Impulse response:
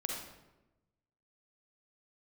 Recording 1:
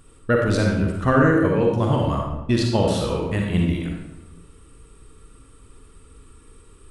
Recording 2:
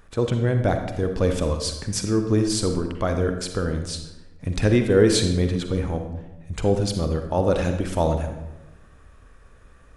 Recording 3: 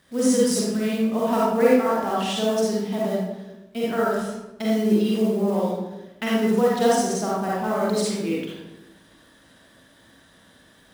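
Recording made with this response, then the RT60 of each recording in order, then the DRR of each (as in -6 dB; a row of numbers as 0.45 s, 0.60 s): 1; 1.0 s, 1.0 s, 1.0 s; -0.5 dB, 6.0 dB, -6.5 dB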